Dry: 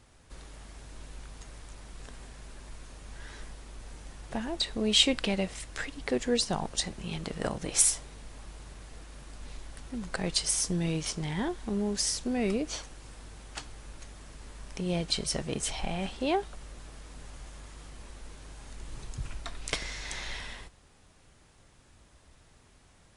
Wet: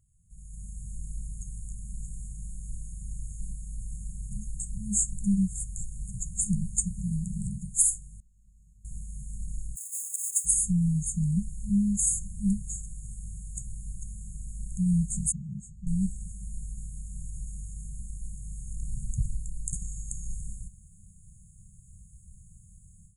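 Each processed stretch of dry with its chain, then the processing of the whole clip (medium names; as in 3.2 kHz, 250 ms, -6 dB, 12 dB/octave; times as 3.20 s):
8.20–8.85 s: three-band isolator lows -17 dB, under 580 Hz, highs -23 dB, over 3.2 kHz + comb 2.9 ms, depth 52% + overdrive pedal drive 18 dB, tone 1.3 kHz, clips at -38.5 dBFS
9.75–10.44 s: formants flattened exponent 0.3 + steep high-pass 380 Hz 72 dB/octave
15.32–15.87 s: high-pass 260 Hz 6 dB/octave + tape spacing loss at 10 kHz 31 dB
whole clip: FFT band-reject 210–6500 Hz; level rider gain up to 16.5 dB; trim -7.5 dB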